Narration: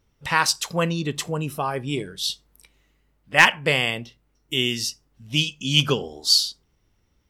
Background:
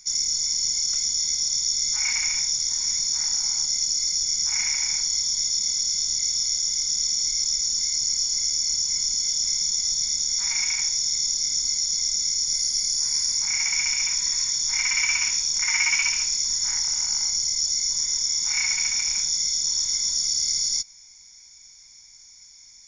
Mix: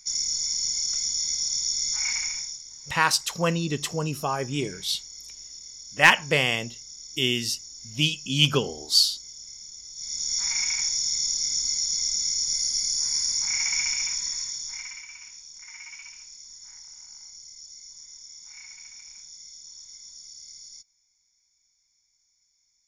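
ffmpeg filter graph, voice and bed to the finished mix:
-filter_complex "[0:a]adelay=2650,volume=0.841[s0];[1:a]volume=4.73,afade=t=out:st=2.12:d=0.51:silence=0.16788,afade=t=in:st=9.93:d=0.43:silence=0.149624,afade=t=out:st=13.78:d=1.26:silence=0.112202[s1];[s0][s1]amix=inputs=2:normalize=0"

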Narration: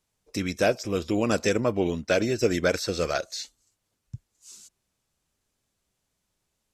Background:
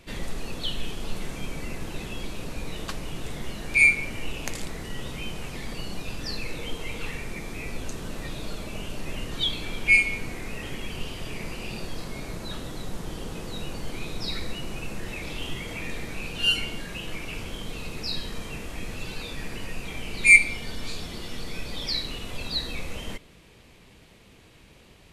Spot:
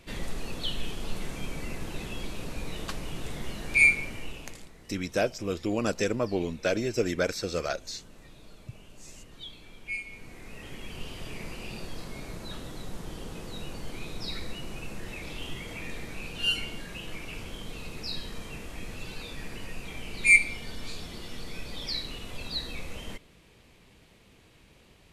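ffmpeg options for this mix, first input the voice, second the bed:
-filter_complex "[0:a]adelay=4550,volume=0.631[s0];[1:a]volume=3.35,afade=t=out:st=3.87:d=0.83:silence=0.177828,afade=t=in:st=10.03:d=1.16:silence=0.237137[s1];[s0][s1]amix=inputs=2:normalize=0"

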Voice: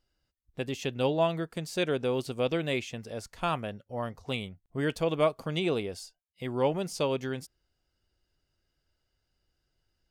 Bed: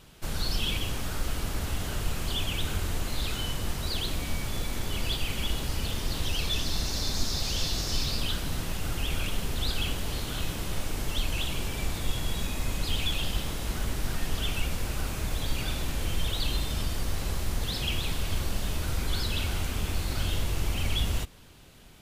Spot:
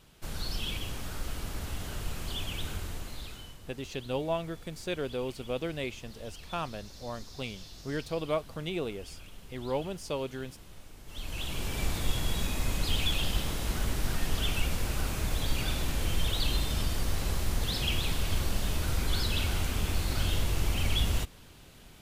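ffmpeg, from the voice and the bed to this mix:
-filter_complex "[0:a]adelay=3100,volume=0.562[s0];[1:a]volume=4.47,afade=t=out:st=2.65:d=0.94:silence=0.223872,afade=t=in:st=11.05:d=0.79:silence=0.11885[s1];[s0][s1]amix=inputs=2:normalize=0"

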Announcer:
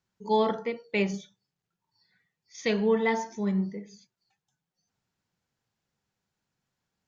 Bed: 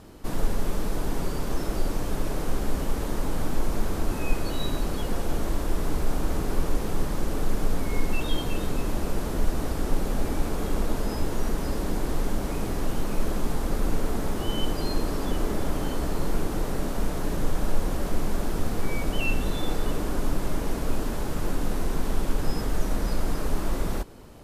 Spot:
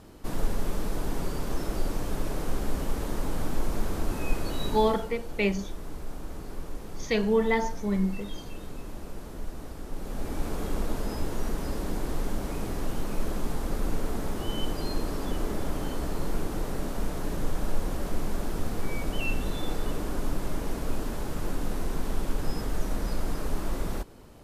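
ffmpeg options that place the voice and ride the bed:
-filter_complex "[0:a]adelay=4450,volume=1.06[s0];[1:a]volume=2,afade=t=out:st=4.66:d=0.45:silence=0.334965,afade=t=in:st=9.91:d=0.61:silence=0.375837[s1];[s0][s1]amix=inputs=2:normalize=0"

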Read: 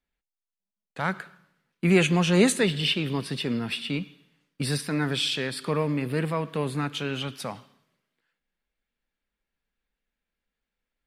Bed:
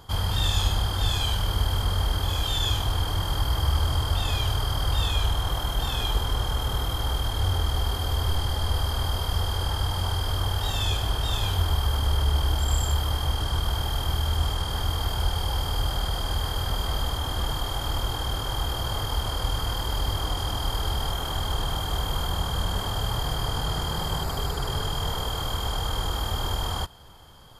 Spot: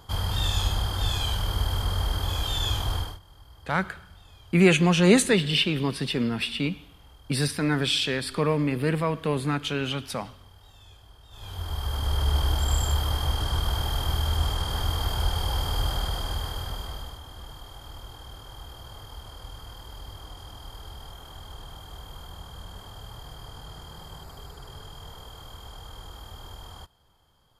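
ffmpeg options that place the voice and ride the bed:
-filter_complex "[0:a]adelay=2700,volume=1.26[s0];[1:a]volume=15,afade=t=out:st=2.95:d=0.24:silence=0.0630957,afade=t=in:st=11.3:d=1.05:silence=0.0530884,afade=t=out:st=15.89:d=1.33:silence=0.188365[s1];[s0][s1]amix=inputs=2:normalize=0"

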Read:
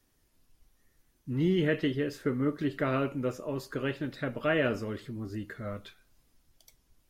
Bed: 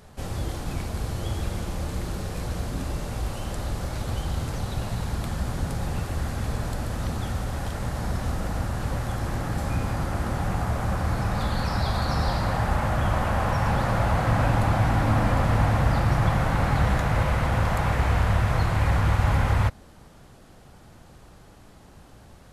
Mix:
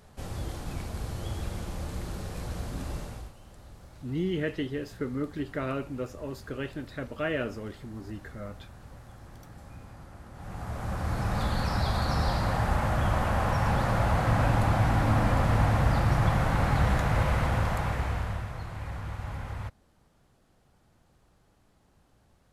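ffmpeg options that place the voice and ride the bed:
-filter_complex "[0:a]adelay=2750,volume=0.708[s0];[1:a]volume=3.98,afade=t=out:st=2.97:d=0.36:silence=0.188365,afade=t=in:st=10.33:d=1.05:silence=0.133352,afade=t=out:st=17.4:d=1.13:silence=0.237137[s1];[s0][s1]amix=inputs=2:normalize=0"

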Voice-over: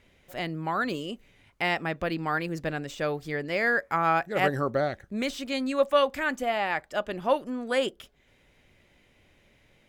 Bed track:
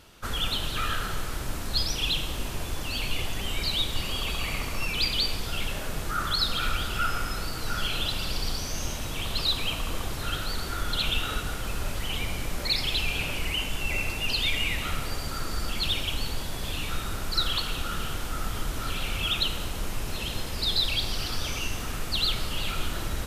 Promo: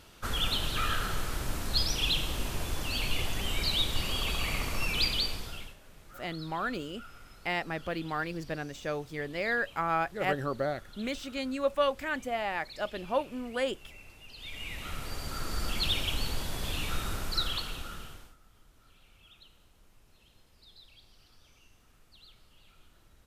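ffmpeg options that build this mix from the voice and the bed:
-filter_complex "[0:a]adelay=5850,volume=0.562[s0];[1:a]volume=8.91,afade=t=out:st=5.01:d=0.75:silence=0.0891251,afade=t=in:st=14.35:d=1.35:silence=0.0944061,afade=t=out:st=17.08:d=1.28:silence=0.0375837[s1];[s0][s1]amix=inputs=2:normalize=0"

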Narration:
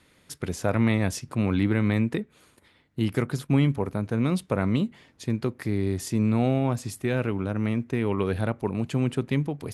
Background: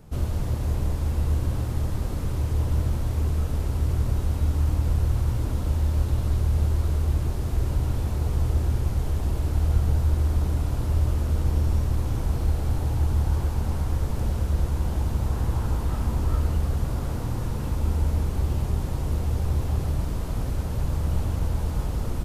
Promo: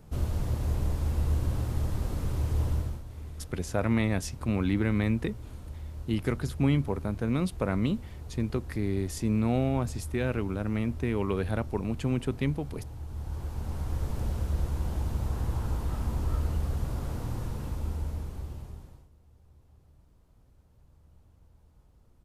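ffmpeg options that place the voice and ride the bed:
-filter_complex "[0:a]adelay=3100,volume=0.668[s0];[1:a]volume=2.51,afade=t=out:st=2.67:d=0.36:silence=0.211349,afade=t=in:st=13.06:d=1.01:silence=0.266073,afade=t=out:st=17.34:d=1.75:silence=0.0375837[s1];[s0][s1]amix=inputs=2:normalize=0"

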